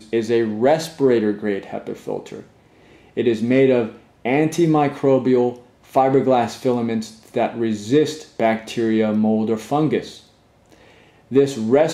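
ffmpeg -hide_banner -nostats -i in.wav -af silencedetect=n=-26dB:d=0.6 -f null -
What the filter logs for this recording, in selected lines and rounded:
silence_start: 2.40
silence_end: 3.17 | silence_duration: 0.77
silence_start: 10.09
silence_end: 11.32 | silence_duration: 1.23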